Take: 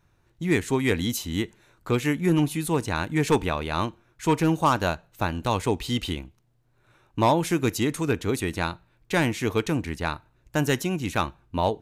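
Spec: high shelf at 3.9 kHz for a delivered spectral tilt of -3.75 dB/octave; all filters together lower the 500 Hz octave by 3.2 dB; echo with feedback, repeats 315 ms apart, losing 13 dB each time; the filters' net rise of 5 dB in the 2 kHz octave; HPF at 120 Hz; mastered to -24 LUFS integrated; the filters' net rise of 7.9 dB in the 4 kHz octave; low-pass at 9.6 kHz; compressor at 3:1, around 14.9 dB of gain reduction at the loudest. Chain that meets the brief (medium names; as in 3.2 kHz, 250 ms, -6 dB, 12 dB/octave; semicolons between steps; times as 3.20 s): high-pass 120 Hz; low-pass 9.6 kHz; peaking EQ 500 Hz -4.5 dB; peaking EQ 2 kHz +4 dB; treble shelf 3.9 kHz +3 dB; peaking EQ 4 kHz +7 dB; compression 3:1, threshold -37 dBFS; feedback delay 315 ms, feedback 22%, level -13 dB; trim +13 dB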